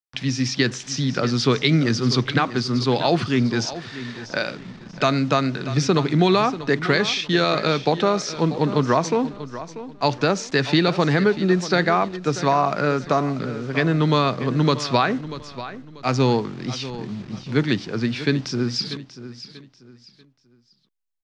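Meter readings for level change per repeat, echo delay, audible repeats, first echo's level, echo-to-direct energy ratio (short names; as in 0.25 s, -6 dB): -10.5 dB, 0.639 s, 3, -14.0 dB, -13.5 dB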